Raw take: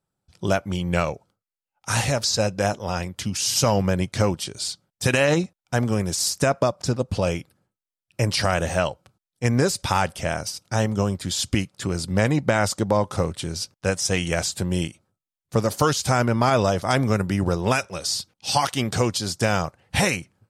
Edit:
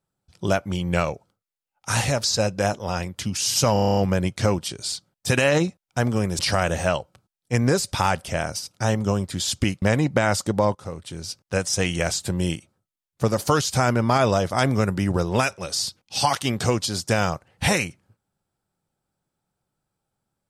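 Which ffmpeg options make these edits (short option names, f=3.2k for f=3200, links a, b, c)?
-filter_complex "[0:a]asplit=12[a][b][c][d][e][f][g][h][i][j][k][l];[a]atrim=end=3.762[m];[b]atrim=start=3.728:end=3.762[n];[c]atrim=start=3.728:end=3.762[o];[d]atrim=start=3.728:end=3.762[p];[e]atrim=start=3.728:end=3.762[q];[f]atrim=start=3.728:end=3.762[r];[g]atrim=start=3.728:end=3.762[s];[h]atrim=start=3.728:end=3.762[t];[i]atrim=start=3.728:end=6.152[u];[j]atrim=start=8.298:end=11.732[v];[k]atrim=start=12.138:end=13.07,asetpts=PTS-STARTPTS,afade=t=out:st=0.928:d=0.004:c=hsin:silence=0.177828[w];[l]atrim=start=13.07,asetpts=PTS-STARTPTS,afade=t=in:d=0.9:silence=0.177828[x];[m][n]acrossfade=d=0.004:c1=hsin:c2=hsin[y];[y][o]acrossfade=d=0.004:c1=hsin:c2=hsin[z];[z][p]acrossfade=d=0.004:c1=hsin:c2=hsin[aa];[aa][q]acrossfade=d=0.004:c1=hsin:c2=hsin[ab];[ab][r]acrossfade=d=0.004:c1=hsin:c2=hsin[ac];[ac][s]acrossfade=d=0.004:c1=hsin:c2=hsin[ad];[ad][t]acrossfade=d=0.004:c1=hsin:c2=hsin[ae];[ae][u]acrossfade=d=0.004:c1=hsin:c2=hsin[af];[af][v]acrossfade=d=0.004:c1=hsin:c2=hsin[ag];[w][x]concat=n=2:v=0:a=1[ah];[ag][ah]acrossfade=d=0.004:c1=hsin:c2=hsin"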